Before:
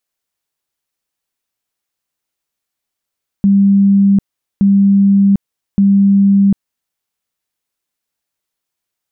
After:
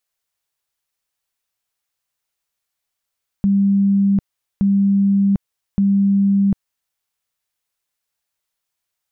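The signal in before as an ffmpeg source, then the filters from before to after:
-f lavfi -i "aevalsrc='0.501*sin(2*PI*198*mod(t,1.17))*lt(mod(t,1.17),148/198)':d=3.51:s=44100"
-af "equalizer=f=270:t=o:w=1.4:g=-8"

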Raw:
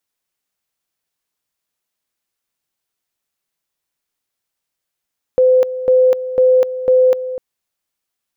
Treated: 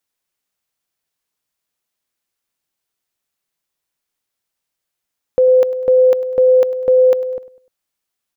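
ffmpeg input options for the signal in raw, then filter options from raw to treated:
-f lavfi -i "aevalsrc='pow(10,(-7.5-13*gte(mod(t,0.5),0.25))/20)*sin(2*PI*511*t)':d=2:s=44100"
-af "aecho=1:1:100|200|300:0.133|0.0547|0.0224"

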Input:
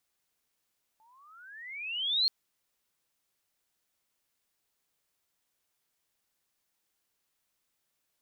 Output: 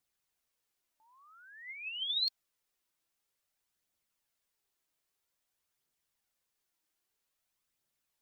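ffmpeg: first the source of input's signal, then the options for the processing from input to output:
-f lavfi -i "aevalsrc='pow(10,(-22+39*(t/1.28-1))/20)*sin(2*PI*859*1.28/(28*log(2)/12)*(exp(28*log(2)/12*t/1.28)-1))':d=1.28:s=44100"
-af "flanger=delay=0.1:depth=3.2:regen=62:speed=0.51:shape=triangular"

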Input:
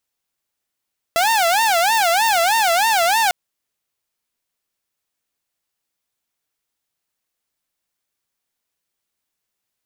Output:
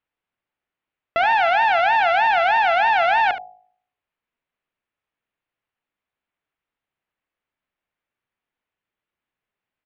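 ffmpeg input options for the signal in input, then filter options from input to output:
-f lavfi -i "aevalsrc='0.266*(2*mod((791*t-124/(2*PI*3.2)*sin(2*PI*3.2*t)),1)-1)':d=2.15:s=44100"
-filter_complex "[0:a]lowpass=f=2.8k:w=0.5412,lowpass=f=2.8k:w=1.3066,bandreject=f=52.24:t=h:w=4,bandreject=f=104.48:t=h:w=4,bandreject=f=156.72:t=h:w=4,bandreject=f=208.96:t=h:w=4,bandreject=f=261.2:t=h:w=4,bandreject=f=313.44:t=h:w=4,bandreject=f=365.68:t=h:w=4,bandreject=f=417.92:t=h:w=4,bandreject=f=470.16:t=h:w=4,bandreject=f=522.4:t=h:w=4,bandreject=f=574.64:t=h:w=4,bandreject=f=626.88:t=h:w=4,bandreject=f=679.12:t=h:w=4,bandreject=f=731.36:t=h:w=4,bandreject=f=783.6:t=h:w=4,bandreject=f=835.84:t=h:w=4,asplit=2[a][b];[b]aecho=0:1:71:0.266[c];[a][c]amix=inputs=2:normalize=0"

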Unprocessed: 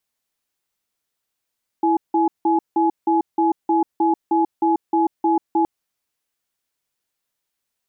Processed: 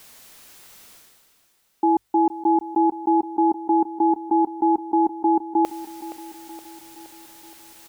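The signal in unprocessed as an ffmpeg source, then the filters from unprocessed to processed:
-f lavfi -i "aevalsrc='0.141*(sin(2*PI*330*t)+sin(2*PI*844*t))*clip(min(mod(t,0.31),0.14-mod(t,0.31))/0.005,0,1)':d=3.82:s=44100"
-af "areverse,acompressor=mode=upward:threshold=-22dB:ratio=2.5,areverse,bandreject=f=50:t=h:w=6,bandreject=f=100:t=h:w=6,aecho=1:1:470|940|1410|1880|2350|2820:0.168|0.0957|0.0545|0.0311|0.0177|0.0101"

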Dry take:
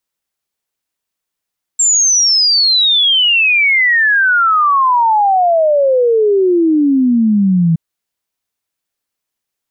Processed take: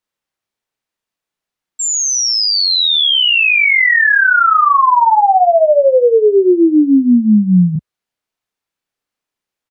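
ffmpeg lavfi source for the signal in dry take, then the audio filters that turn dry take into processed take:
-f lavfi -i "aevalsrc='0.398*clip(min(t,5.97-t)/0.01,0,1)*sin(2*PI*7500*5.97/log(160/7500)*(exp(log(160/7500)*t/5.97)-1))':d=5.97:s=44100"
-filter_complex "[0:a]lowpass=f=3.4k:p=1,equalizer=f=63:t=o:w=0.76:g=-6,asplit=2[a][b];[b]adelay=33,volume=-4dB[c];[a][c]amix=inputs=2:normalize=0"

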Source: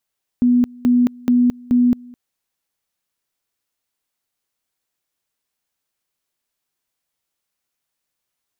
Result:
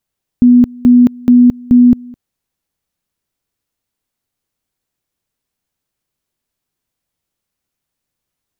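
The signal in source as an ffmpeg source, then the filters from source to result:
-f lavfi -i "aevalsrc='pow(10,(-10.5-25.5*gte(mod(t,0.43),0.22))/20)*sin(2*PI*245*t)':d=1.72:s=44100"
-af "lowshelf=f=350:g=12"

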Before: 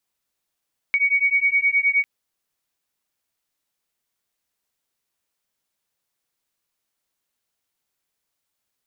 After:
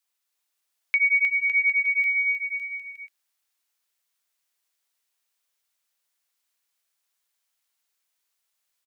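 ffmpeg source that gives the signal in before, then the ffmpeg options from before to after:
-f lavfi -i "aevalsrc='0.106*(sin(2*PI*2240*t)+sin(2*PI*2249.6*t))':d=1.1:s=44100"
-filter_complex "[0:a]highpass=f=1.2k:p=1,asplit=2[a][b];[b]aecho=0:1:310|558|756.4|915.1|1042:0.631|0.398|0.251|0.158|0.1[c];[a][c]amix=inputs=2:normalize=0"

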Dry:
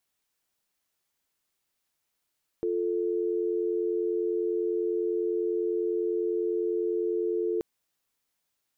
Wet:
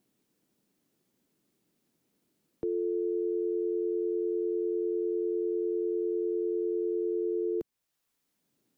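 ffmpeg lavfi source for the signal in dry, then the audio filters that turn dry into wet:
-f lavfi -i "aevalsrc='0.0398*(sin(2*PI*350*t)+sin(2*PI*440*t))':d=4.98:s=44100"
-filter_complex "[0:a]acrossover=split=160|340[a][b][c];[b]acompressor=mode=upward:threshold=-58dB:ratio=2.5[d];[c]alimiter=level_in=6dB:limit=-24dB:level=0:latency=1:release=460,volume=-6dB[e];[a][d][e]amix=inputs=3:normalize=0"

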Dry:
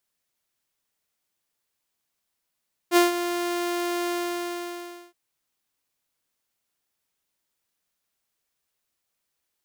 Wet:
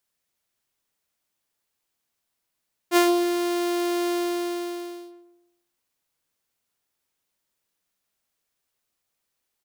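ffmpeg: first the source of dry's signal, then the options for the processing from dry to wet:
-f lavfi -i "aevalsrc='0.282*(2*mod(349*t,1)-1)':d=2.22:s=44100,afade=t=in:d=0.055,afade=t=out:st=0.055:d=0.148:silence=0.266,afade=t=out:st=1.19:d=1.03"
-filter_complex "[0:a]asplit=2[a][b];[b]adelay=132,lowpass=f=1.1k:p=1,volume=-4.5dB,asplit=2[c][d];[d]adelay=132,lowpass=f=1.1k:p=1,volume=0.4,asplit=2[e][f];[f]adelay=132,lowpass=f=1.1k:p=1,volume=0.4,asplit=2[g][h];[h]adelay=132,lowpass=f=1.1k:p=1,volume=0.4,asplit=2[i][j];[j]adelay=132,lowpass=f=1.1k:p=1,volume=0.4[k];[a][c][e][g][i][k]amix=inputs=6:normalize=0"

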